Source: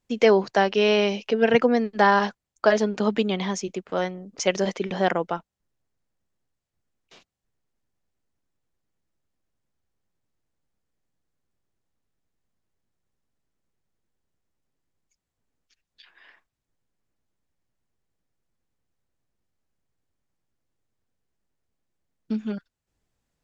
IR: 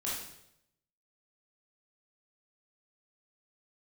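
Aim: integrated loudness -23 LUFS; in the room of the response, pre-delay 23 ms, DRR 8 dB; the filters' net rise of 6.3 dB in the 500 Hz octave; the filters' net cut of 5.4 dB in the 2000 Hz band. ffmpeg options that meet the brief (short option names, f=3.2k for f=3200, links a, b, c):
-filter_complex "[0:a]equalizer=f=500:t=o:g=8,equalizer=f=2k:t=o:g=-7.5,asplit=2[a][b];[1:a]atrim=start_sample=2205,adelay=23[c];[b][c]afir=irnorm=-1:irlink=0,volume=-11.5dB[d];[a][d]amix=inputs=2:normalize=0,volume=-5dB"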